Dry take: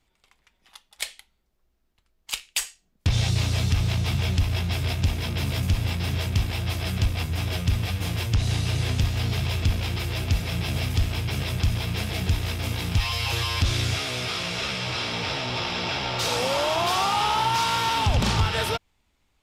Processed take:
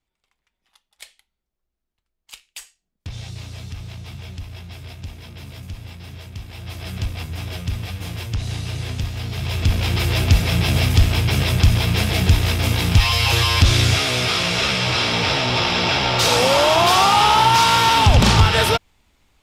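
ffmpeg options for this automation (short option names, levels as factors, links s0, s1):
-af "volume=2.82,afade=t=in:st=6.44:d=0.54:silence=0.375837,afade=t=in:st=9.32:d=0.76:silence=0.281838"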